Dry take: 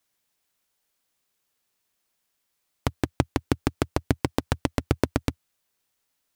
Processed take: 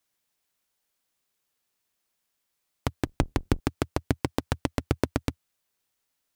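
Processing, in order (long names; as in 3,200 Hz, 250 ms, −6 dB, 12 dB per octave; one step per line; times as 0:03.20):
0:03.05–0:03.60: sub-octave generator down 2 octaves, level −1 dB
level −2.5 dB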